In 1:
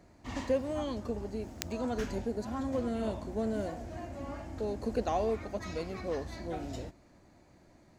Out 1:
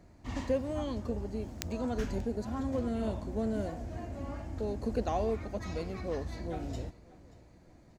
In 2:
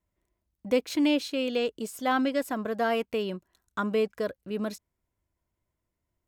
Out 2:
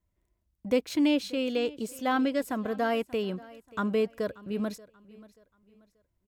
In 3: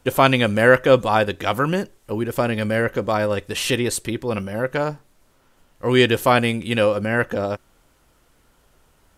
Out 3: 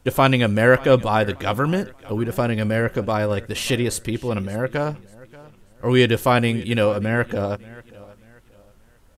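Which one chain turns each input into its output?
low shelf 180 Hz +7.5 dB; on a send: feedback echo 0.583 s, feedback 34%, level -21 dB; on the sum: gain -2 dB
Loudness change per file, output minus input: 0.0, -0.5, -0.5 LU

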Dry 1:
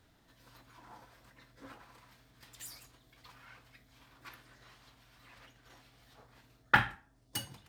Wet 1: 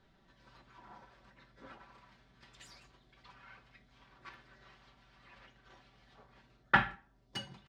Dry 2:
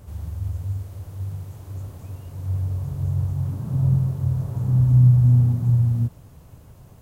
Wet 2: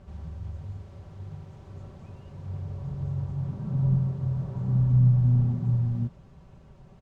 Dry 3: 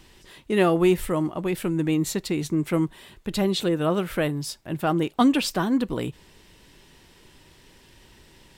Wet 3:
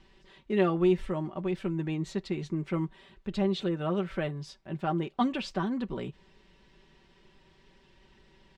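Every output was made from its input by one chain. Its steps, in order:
air absorption 140 m; comb 5.2 ms, depth 58%; normalise peaks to -12 dBFS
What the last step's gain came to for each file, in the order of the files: -0.5, -3.5, -8.0 dB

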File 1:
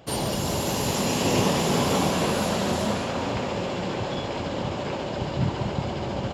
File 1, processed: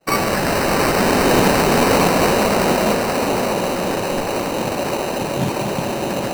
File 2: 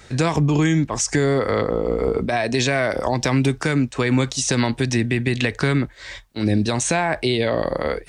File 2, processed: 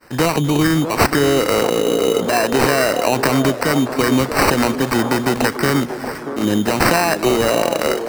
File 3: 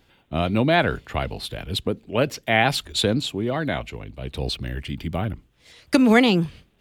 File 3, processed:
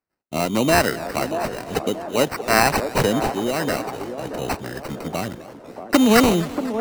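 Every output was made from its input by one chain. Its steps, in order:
HPF 190 Hz 12 dB/oct; expander -42 dBFS; high shelf 6900 Hz +10.5 dB; reverse; upward compressor, threshold -34 dBFS; reverse; sample-and-hold 13×; on a send: band-limited delay 0.633 s, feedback 43%, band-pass 550 Hz, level -7.5 dB; on the sum: warbling echo 0.251 s, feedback 71%, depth 170 cents, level -19 dB; normalise peaks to -1.5 dBFS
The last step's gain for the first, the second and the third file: +8.0, +4.0, +2.0 dB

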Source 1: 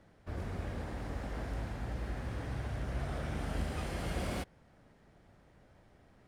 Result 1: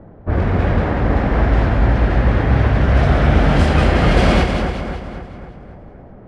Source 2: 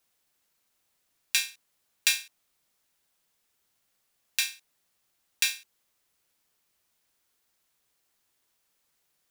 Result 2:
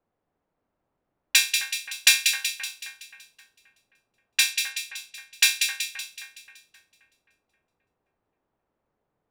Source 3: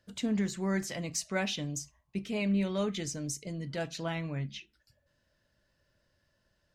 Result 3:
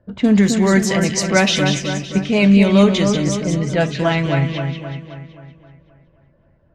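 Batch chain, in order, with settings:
low-pass opened by the level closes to 760 Hz, open at -27 dBFS; on a send: split-band echo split 2000 Hz, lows 0.264 s, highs 0.188 s, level -5.5 dB; on the sum: normalise peaks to -1.5 dBFS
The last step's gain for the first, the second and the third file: +22.5, +8.0, +17.0 dB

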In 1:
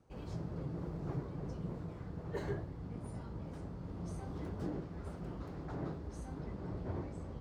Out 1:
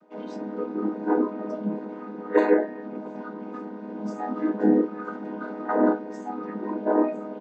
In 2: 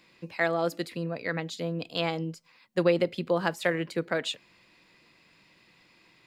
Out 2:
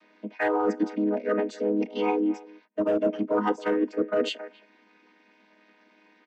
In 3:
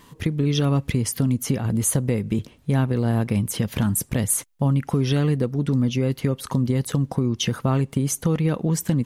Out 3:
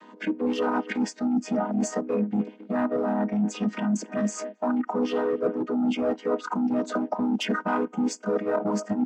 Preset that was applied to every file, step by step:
chord vocoder minor triad, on G#3; speakerphone echo 0.27 s, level -16 dB; overdrive pedal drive 18 dB, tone 1700 Hz, clips at -9.5 dBFS; dynamic EQ 3900 Hz, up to -8 dB, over -56 dBFS, Q 2.4; in parallel at -8 dB: hard clip -20.5 dBFS; on the sum: Bessel high-pass 180 Hz, order 2; spectral noise reduction 10 dB; reverse; compressor 10:1, threshold -27 dBFS; reverse; match loudness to -27 LUFS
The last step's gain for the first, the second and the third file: +14.5, +6.0, +5.0 dB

